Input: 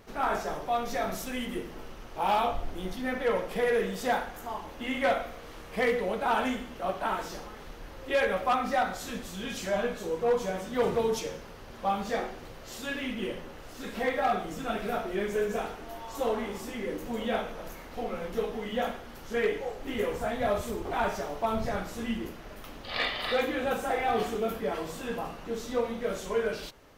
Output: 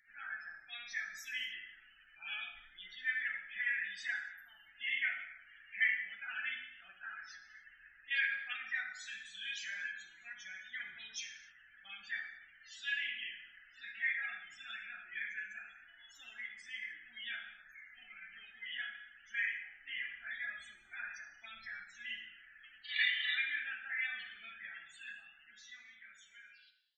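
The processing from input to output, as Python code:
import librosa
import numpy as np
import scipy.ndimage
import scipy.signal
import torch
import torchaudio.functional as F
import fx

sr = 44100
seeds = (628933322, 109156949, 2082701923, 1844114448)

y = fx.fade_out_tail(x, sr, length_s=2.31)
y = fx.high_shelf(y, sr, hz=3800.0, db=-7.0)
y = fx.spec_topn(y, sr, count=64)
y = scipy.signal.sosfilt(scipy.signal.ellip(4, 1.0, 40, 1700.0, 'highpass', fs=sr, output='sos'), y)
y = fx.rev_gated(y, sr, seeds[0], gate_ms=310, shape='falling', drr_db=5.5)
y = y * 10.0 ** (2.5 / 20.0)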